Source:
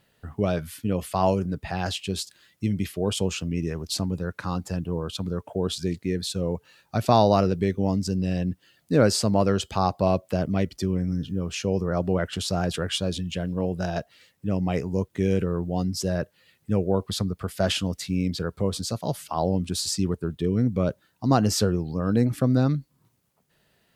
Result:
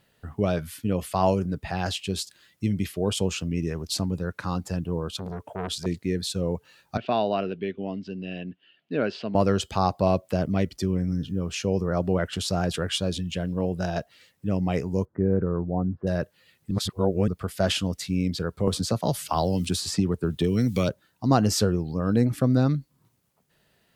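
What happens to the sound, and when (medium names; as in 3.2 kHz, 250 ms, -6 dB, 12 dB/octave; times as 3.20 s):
5.09–5.86 s: transformer saturation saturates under 960 Hz
6.97–9.35 s: cabinet simulation 300–3100 Hz, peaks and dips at 320 Hz -4 dB, 520 Hz -8 dB, 870 Hz -9 dB, 1.2 kHz -8 dB, 2 kHz -5 dB, 2.9 kHz +7 dB
15.05–16.07 s: steep low-pass 1.5 kHz
16.71–17.28 s: reverse
18.67–20.89 s: three bands compressed up and down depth 100%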